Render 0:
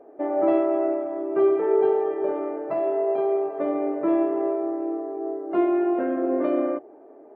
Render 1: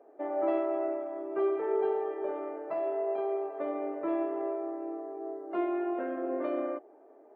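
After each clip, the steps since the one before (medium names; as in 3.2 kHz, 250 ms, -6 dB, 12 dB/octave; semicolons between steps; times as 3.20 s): high-pass 520 Hz 6 dB/octave; trim -5 dB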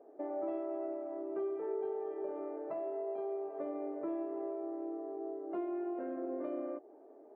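tilt shelf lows +6.5 dB, about 870 Hz; compression 2.5:1, threshold -35 dBFS, peak gain reduction 10 dB; trim -3.5 dB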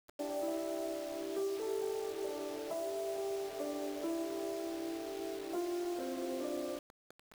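word length cut 8-bit, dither none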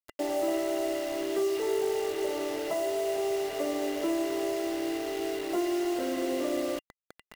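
small resonant body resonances 2/2.8 kHz, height 13 dB, ringing for 45 ms; trim +8.5 dB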